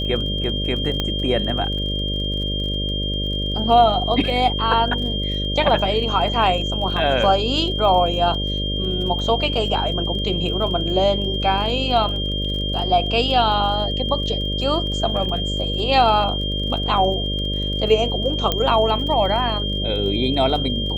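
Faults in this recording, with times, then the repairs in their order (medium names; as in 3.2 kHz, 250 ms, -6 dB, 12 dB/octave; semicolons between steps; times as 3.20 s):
buzz 50 Hz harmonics 12 -25 dBFS
crackle 30 per s -30 dBFS
whine 3.2 kHz -25 dBFS
1.00 s: pop -9 dBFS
18.52 s: pop -6 dBFS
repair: de-click; de-hum 50 Hz, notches 12; band-stop 3.2 kHz, Q 30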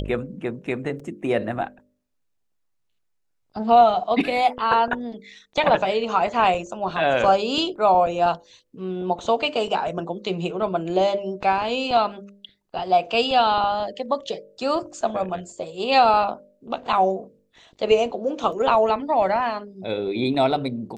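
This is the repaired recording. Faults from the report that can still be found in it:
1.00 s: pop
18.52 s: pop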